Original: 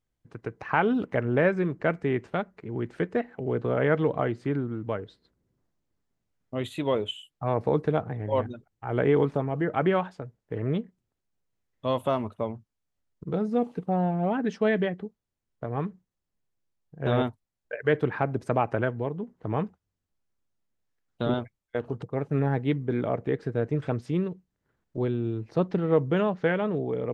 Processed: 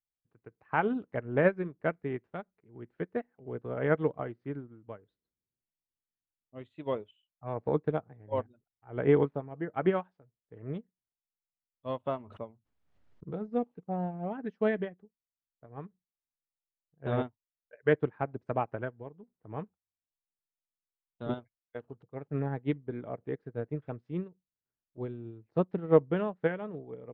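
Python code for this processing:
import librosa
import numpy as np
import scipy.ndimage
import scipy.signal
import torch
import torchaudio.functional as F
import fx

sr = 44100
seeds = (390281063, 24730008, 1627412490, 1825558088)

y = fx.pre_swell(x, sr, db_per_s=48.0, at=(12.27, 13.46))
y = fx.high_shelf(y, sr, hz=3400.0, db=7.5, at=(21.29, 22.31))
y = scipy.signal.sosfilt(scipy.signal.bessel(2, 2400.0, 'lowpass', norm='mag', fs=sr, output='sos'), y)
y = fx.upward_expand(y, sr, threshold_db=-35.0, expansion=2.5)
y = y * librosa.db_to_amplitude(2.0)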